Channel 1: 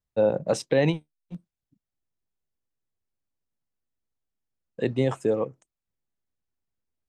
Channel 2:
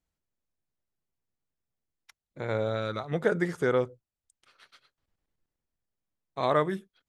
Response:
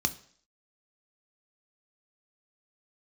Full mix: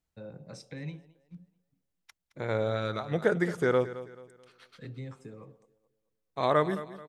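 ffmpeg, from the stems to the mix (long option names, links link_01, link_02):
-filter_complex "[0:a]acompressor=threshold=-27dB:ratio=2,volume=-15dB,asplit=3[link_01][link_02][link_03];[link_02]volume=-7dB[link_04];[link_03]volume=-21dB[link_05];[1:a]volume=0dB,asplit=2[link_06][link_07];[link_07]volume=-15dB[link_08];[2:a]atrim=start_sample=2205[link_09];[link_04][link_09]afir=irnorm=-1:irlink=0[link_10];[link_05][link_08]amix=inputs=2:normalize=0,aecho=0:1:217|434|651|868|1085:1|0.35|0.122|0.0429|0.015[link_11];[link_01][link_06][link_10][link_11]amix=inputs=4:normalize=0"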